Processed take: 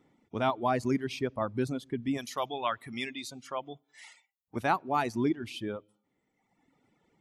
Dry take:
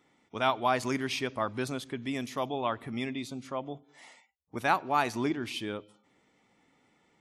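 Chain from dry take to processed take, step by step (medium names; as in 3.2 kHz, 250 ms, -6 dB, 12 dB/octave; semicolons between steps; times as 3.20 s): reverb removal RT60 1.4 s; tilt shelf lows +6.5 dB, about 720 Hz, from 2.17 s lows -4.5 dB, from 4.55 s lows +4.5 dB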